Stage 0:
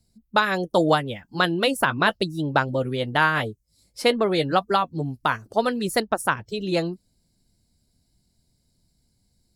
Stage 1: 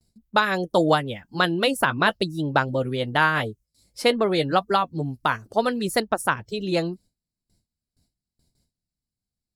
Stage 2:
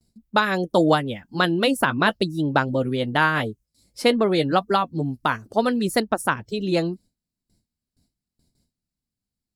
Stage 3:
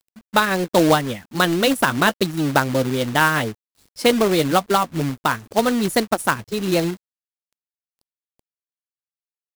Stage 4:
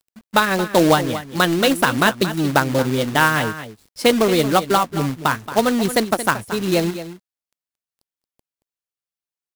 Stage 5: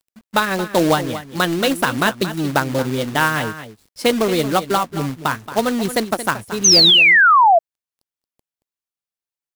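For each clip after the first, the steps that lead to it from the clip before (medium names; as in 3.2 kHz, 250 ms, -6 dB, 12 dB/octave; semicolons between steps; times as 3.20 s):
gate with hold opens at -55 dBFS
peaking EQ 250 Hz +5 dB 1 oct
companded quantiser 4-bit; trim +2 dB
delay 226 ms -12.5 dB; trim +1 dB
painted sound fall, 6.64–7.59 s, 640–6500 Hz -9 dBFS; trim -1.5 dB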